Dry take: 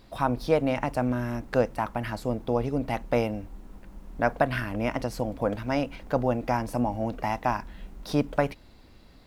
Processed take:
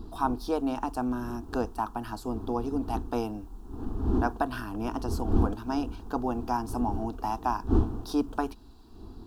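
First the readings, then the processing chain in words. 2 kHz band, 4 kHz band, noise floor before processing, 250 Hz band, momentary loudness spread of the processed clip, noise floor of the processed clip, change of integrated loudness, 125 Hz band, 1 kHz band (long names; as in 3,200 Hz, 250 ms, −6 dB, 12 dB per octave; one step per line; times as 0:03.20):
−8.5 dB, −4.0 dB, −52 dBFS, 0.0 dB, 7 LU, −48 dBFS, −2.5 dB, −2.0 dB, −1.0 dB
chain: wind on the microphone 190 Hz −30 dBFS
phaser with its sweep stopped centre 560 Hz, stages 6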